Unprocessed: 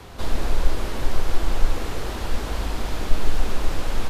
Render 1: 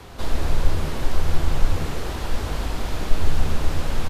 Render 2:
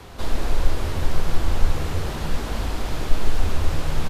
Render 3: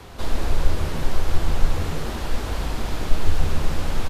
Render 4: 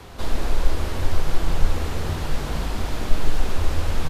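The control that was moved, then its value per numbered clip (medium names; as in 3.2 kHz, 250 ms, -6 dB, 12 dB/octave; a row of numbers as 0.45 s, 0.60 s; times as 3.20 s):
frequency-shifting echo, time: 82 ms, 300 ms, 139 ms, 454 ms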